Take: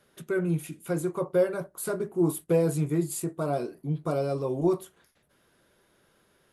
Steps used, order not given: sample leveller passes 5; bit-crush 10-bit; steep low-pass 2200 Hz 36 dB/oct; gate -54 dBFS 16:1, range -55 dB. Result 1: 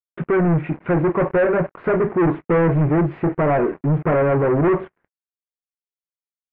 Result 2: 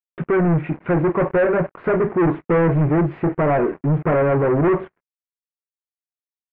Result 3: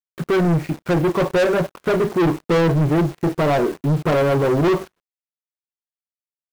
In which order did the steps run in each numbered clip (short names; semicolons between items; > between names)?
bit-crush > sample leveller > gate > steep low-pass; gate > bit-crush > sample leveller > steep low-pass; gate > steep low-pass > bit-crush > sample leveller